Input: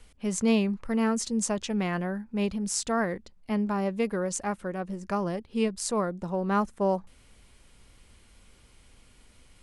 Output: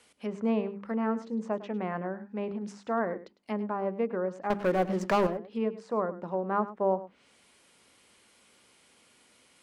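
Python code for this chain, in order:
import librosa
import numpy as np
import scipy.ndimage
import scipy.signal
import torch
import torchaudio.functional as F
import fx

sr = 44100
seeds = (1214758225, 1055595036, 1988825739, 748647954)

p1 = scipy.signal.sosfilt(scipy.signal.butter(2, 250.0, 'highpass', fs=sr, output='sos'), x)
p2 = fx.env_lowpass_down(p1, sr, base_hz=1300.0, full_db=-28.5)
p3 = fx.hum_notches(p2, sr, base_hz=50, count=9)
p4 = fx.leveller(p3, sr, passes=3, at=(4.5, 5.27))
y = p4 + fx.echo_single(p4, sr, ms=104, db=-15.5, dry=0)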